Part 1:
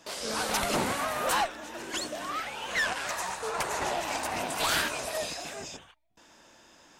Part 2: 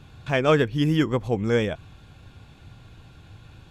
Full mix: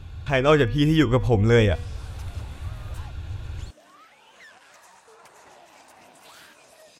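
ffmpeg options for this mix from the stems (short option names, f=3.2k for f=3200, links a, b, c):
-filter_complex "[0:a]highpass=72,acompressor=threshold=-34dB:ratio=2,adelay=1650,volume=-19.5dB[a];[1:a]lowshelf=f=110:t=q:w=1.5:g=9.5,bandreject=f=241.4:t=h:w=4,bandreject=f=482.8:t=h:w=4,bandreject=f=724.2:t=h:w=4,bandreject=f=965.6:t=h:w=4,bandreject=f=1.207k:t=h:w=4,bandreject=f=1.4484k:t=h:w=4,bandreject=f=1.6898k:t=h:w=4,bandreject=f=1.9312k:t=h:w=4,bandreject=f=2.1726k:t=h:w=4,bandreject=f=2.414k:t=h:w=4,bandreject=f=2.6554k:t=h:w=4,bandreject=f=2.8968k:t=h:w=4,bandreject=f=3.1382k:t=h:w=4,bandreject=f=3.3796k:t=h:w=4,bandreject=f=3.621k:t=h:w=4,bandreject=f=3.8624k:t=h:w=4,bandreject=f=4.1038k:t=h:w=4,bandreject=f=4.3452k:t=h:w=4,bandreject=f=4.5866k:t=h:w=4,bandreject=f=4.828k:t=h:w=4,bandreject=f=5.0694k:t=h:w=4,bandreject=f=5.3108k:t=h:w=4,bandreject=f=5.5522k:t=h:w=4,bandreject=f=5.7936k:t=h:w=4,bandreject=f=6.035k:t=h:w=4,bandreject=f=6.2764k:t=h:w=4,bandreject=f=6.5178k:t=h:w=4,volume=1.5dB[b];[a][b]amix=inputs=2:normalize=0,dynaudnorm=f=290:g=5:m=4dB"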